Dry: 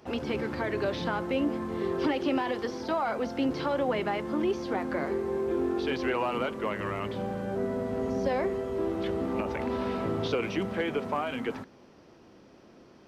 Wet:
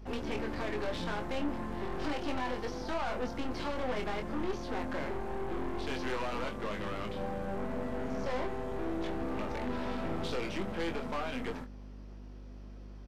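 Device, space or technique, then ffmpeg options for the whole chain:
valve amplifier with mains hum: -filter_complex "[0:a]aeval=exprs='(tanh(44.7*val(0)+0.8)-tanh(0.8))/44.7':c=same,aeval=exprs='val(0)+0.00447*(sin(2*PI*50*n/s)+sin(2*PI*2*50*n/s)/2+sin(2*PI*3*50*n/s)/3+sin(2*PI*4*50*n/s)/4+sin(2*PI*5*50*n/s)/5)':c=same,asplit=2[s0][s1];[s1]adelay=24,volume=0.531[s2];[s0][s2]amix=inputs=2:normalize=0"

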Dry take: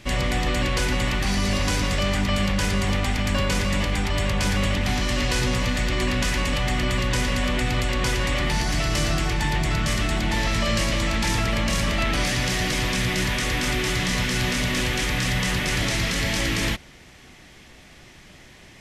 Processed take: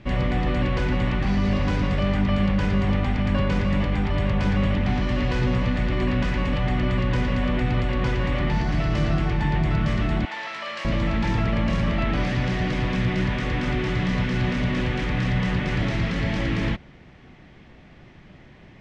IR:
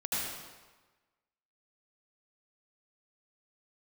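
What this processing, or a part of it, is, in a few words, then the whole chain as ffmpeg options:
phone in a pocket: -filter_complex "[0:a]asettb=1/sr,asplit=3[s0][s1][s2];[s0]atrim=end=10.254[s3];[s1]atrim=start=10.25:end=10.85,asetpts=PTS-STARTPTS,afade=t=in:d=0.004:c=qsin,afade=t=out:st=0.596:d=0.004:c=qsin,highpass=910[s4];[s2]atrim=start=10.846[s5];[s3][s4]acrossfade=d=0.004:c1=hsin:c2=qsin[s6];[s6][s5]acrossfade=d=0.004:c1=qsin:c2=hsin,lowpass=3800,equalizer=f=160:t=o:w=1.3:g=4.5,highshelf=f=2200:g=-10"

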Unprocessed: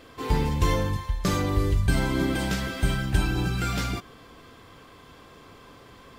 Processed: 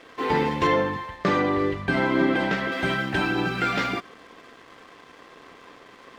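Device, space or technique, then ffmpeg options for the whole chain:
pocket radio on a weak battery: -filter_complex "[0:a]highpass=270,lowpass=3100,aeval=exprs='sgn(val(0))*max(abs(val(0))-0.00168,0)':c=same,equalizer=f=1900:t=o:w=0.24:g=5,asettb=1/sr,asplit=3[s0][s1][s2];[s0]atrim=end=0.674[s3];[s1]atrim=start=0.67:end=2.72,asetpts=PTS-STARTPTS,afade=t=in:d=0.004:c=qsin,afade=t=out:st=2.046:d=0.004:c=qsin,highshelf=f=3600:g=-8[s4];[s2]atrim=start=2.716[s5];[s3][s4]acrossfade=d=0.004:c1=hsin:c2=qsin[s6];[s6][s5]acrossfade=d=0.004:c1=qsin:c2=hsin,volume=2.37"

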